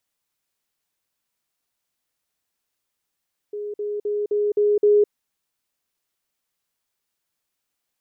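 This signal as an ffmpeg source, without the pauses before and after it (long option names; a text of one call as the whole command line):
ffmpeg -f lavfi -i "aevalsrc='pow(10,(-27+3*floor(t/0.26))/20)*sin(2*PI*415*t)*clip(min(mod(t,0.26),0.21-mod(t,0.26))/0.005,0,1)':duration=1.56:sample_rate=44100" out.wav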